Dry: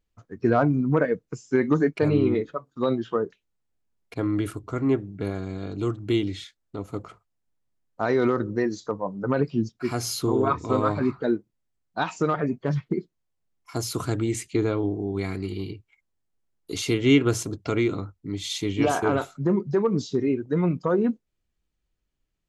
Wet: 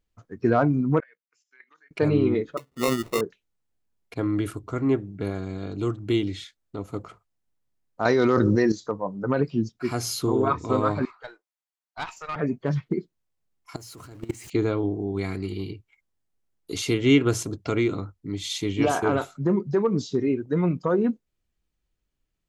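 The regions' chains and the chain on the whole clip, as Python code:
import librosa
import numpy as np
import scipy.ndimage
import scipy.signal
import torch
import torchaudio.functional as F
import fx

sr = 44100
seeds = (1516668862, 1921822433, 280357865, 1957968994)

y = fx.chain(x, sr, fx.ladder_bandpass(hz=2600.0, resonance_pct=30),
    fx.level_steps(step_db=14), at=(1.0, 1.91))
y = fx.chain(y, sr, fx.highpass(hz=49.0, slope=12),
    fx.high_shelf(hz=4500.0, db=6.5),
    fx.sample_hold(seeds[0], rate_hz=1600.0, jitter_pct=0), at=(2.57, 3.21))
y = fx.chain(y, sr, fx.peak_eq(hz=5300.0, db=9.5, octaves=0.91),
    fx.env_flatten(amount_pct=100), at=(8.05, 8.72))
y = fx.chain(y, sr, fx.highpass(hz=720.0, slope=24),
    fx.tube_stage(drive_db=23.0, bias=0.8), at=(11.05, 12.36))
y = fx.chain(y, sr, fx.zero_step(step_db=-33.0),
    fx.notch(hz=3500.0, q=12.0),
    fx.level_steps(step_db=22), at=(13.76, 14.5))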